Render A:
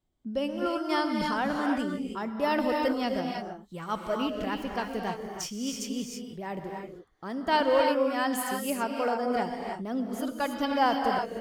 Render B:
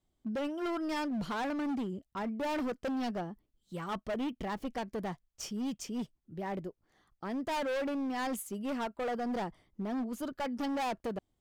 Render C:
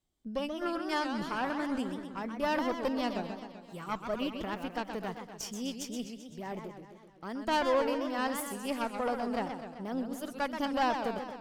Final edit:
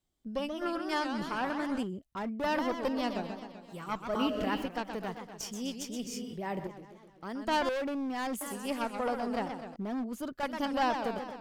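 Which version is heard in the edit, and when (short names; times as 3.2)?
C
1.83–2.44 from B
4.15–4.66 from A
6.07–6.67 from A
7.69–8.41 from B
9.76–10.43 from B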